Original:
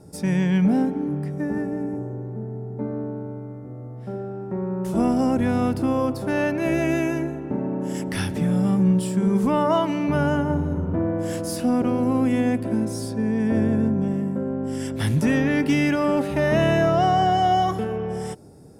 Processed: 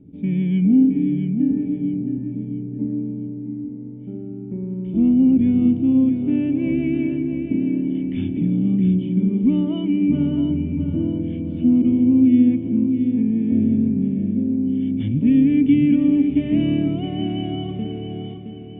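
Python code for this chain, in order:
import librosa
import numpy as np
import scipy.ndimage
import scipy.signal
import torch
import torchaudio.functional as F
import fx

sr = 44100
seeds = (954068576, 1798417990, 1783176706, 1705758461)

y = fx.formant_cascade(x, sr, vowel='i')
y = fx.low_shelf(y, sr, hz=140.0, db=5.5)
y = fx.echo_feedback(y, sr, ms=667, feedback_pct=38, wet_db=-7.5)
y = F.gain(torch.from_numpy(y), 7.0).numpy()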